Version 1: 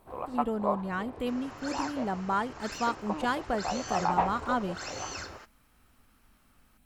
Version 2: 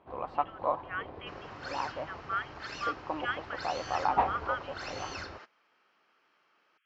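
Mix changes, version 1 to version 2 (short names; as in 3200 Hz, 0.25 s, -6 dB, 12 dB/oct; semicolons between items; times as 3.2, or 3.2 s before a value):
speech: add brick-wall FIR band-pass 1100–3400 Hz; master: add LPF 4900 Hz 24 dB/oct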